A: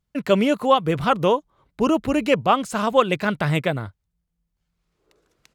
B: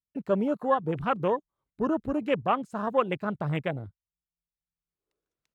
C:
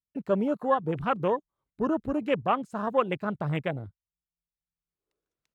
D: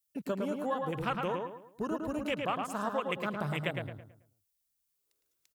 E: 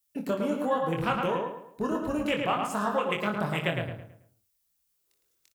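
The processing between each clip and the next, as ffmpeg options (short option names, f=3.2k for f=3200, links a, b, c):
-af "afwtdn=0.0631,volume=-7.5dB"
-af anull
-filter_complex "[0:a]acompressor=threshold=-28dB:ratio=6,asplit=2[a][b];[b]adelay=109,lowpass=f=3.1k:p=1,volume=-3.5dB,asplit=2[c][d];[d]adelay=109,lowpass=f=3.1k:p=1,volume=0.38,asplit=2[e][f];[f]adelay=109,lowpass=f=3.1k:p=1,volume=0.38,asplit=2[g][h];[h]adelay=109,lowpass=f=3.1k:p=1,volume=0.38,asplit=2[i][j];[j]adelay=109,lowpass=f=3.1k:p=1,volume=0.38[k];[c][e][g][i][k]amix=inputs=5:normalize=0[l];[a][l]amix=inputs=2:normalize=0,crystalizer=i=6.5:c=0,volume=-4dB"
-af "aecho=1:1:24|60:0.596|0.251,volume=4dB"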